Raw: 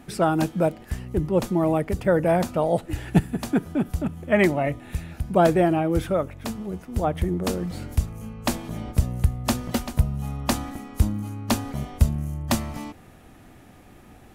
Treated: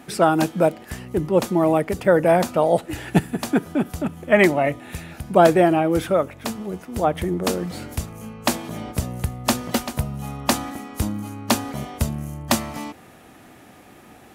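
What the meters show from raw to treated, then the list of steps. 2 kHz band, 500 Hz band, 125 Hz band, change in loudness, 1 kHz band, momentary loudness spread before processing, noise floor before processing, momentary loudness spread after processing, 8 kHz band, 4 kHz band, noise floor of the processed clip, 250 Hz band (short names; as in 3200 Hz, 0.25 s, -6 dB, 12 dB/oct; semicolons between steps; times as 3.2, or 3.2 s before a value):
+5.5 dB, +4.5 dB, -2.0 dB, +3.0 dB, +5.0 dB, 11 LU, -49 dBFS, 15 LU, +5.5 dB, +5.5 dB, -47 dBFS, +2.0 dB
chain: HPF 270 Hz 6 dB/oct; gain +5.5 dB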